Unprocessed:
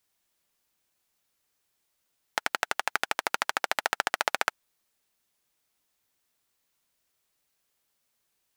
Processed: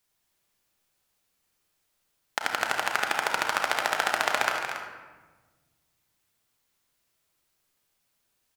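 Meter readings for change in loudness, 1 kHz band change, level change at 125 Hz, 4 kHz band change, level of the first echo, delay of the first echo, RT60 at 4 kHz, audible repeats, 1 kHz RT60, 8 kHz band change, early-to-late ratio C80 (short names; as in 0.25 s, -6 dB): +2.0 dB, +3.0 dB, +6.0 dB, +2.0 dB, -10.0 dB, 0.235 s, 0.75 s, 2, 1.2 s, +1.5 dB, 3.0 dB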